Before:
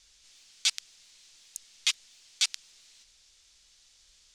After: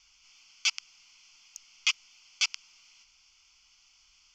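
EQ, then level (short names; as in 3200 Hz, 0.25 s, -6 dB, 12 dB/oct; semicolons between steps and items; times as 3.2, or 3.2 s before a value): running mean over 5 samples; low shelf 370 Hz -12 dB; fixed phaser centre 2600 Hz, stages 8; +7.0 dB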